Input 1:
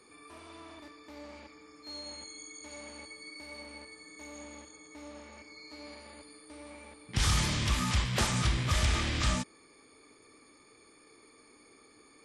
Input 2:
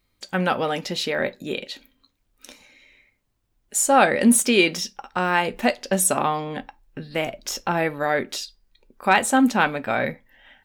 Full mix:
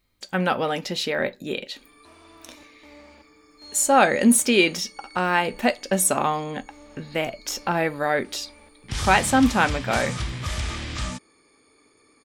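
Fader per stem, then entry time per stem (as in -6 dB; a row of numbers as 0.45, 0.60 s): -0.5, -0.5 dB; 1.75, 0.00 s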